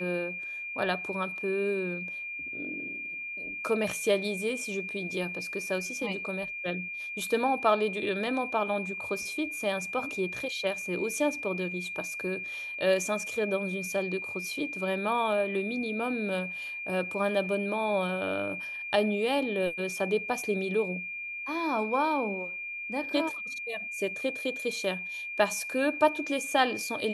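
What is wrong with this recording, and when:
whine 2.4 kHz -35 dBFS

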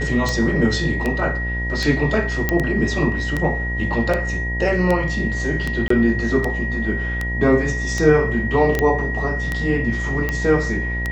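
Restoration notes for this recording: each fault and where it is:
buzz 60 Hz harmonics 17 -25 dBFS
tick 78 rpm -9 dBFS
whine 1.9 kHz -25 dBFS
2.49 s: pop -5 dBFS
5.88–5.90 s: dropout 24 ms
8.79 s: pop -6 dBFS

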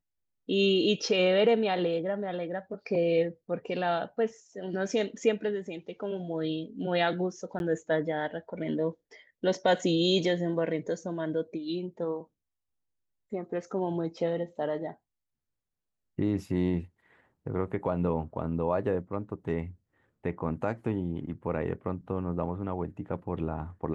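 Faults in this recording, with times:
7.59–7.60 s: dropout 11 ms

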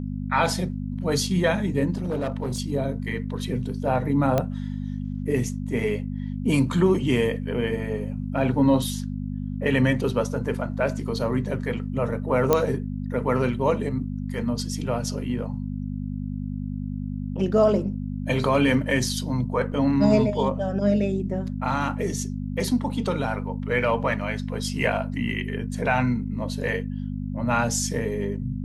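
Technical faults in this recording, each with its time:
hum 50 Hz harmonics 5 -30 dBFS
1.94–2.60 s: clipped -22.5 dBFS
4.38 s: pop -10 dBFS
12.53 s: pop -5 dBFS
19.72 s: dropout 3.7 ms

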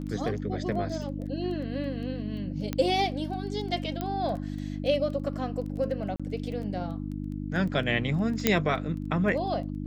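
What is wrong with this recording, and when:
crackle 11 per s -36 dBFS
hum 50 Hz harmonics 6 -34 dBFS
2.73 s: pop -15 dBFS
4.01 s: pop -18 dBFS
6.16–6.20 s: dropout 36 ms
8.47 s: pop -5 dBFS

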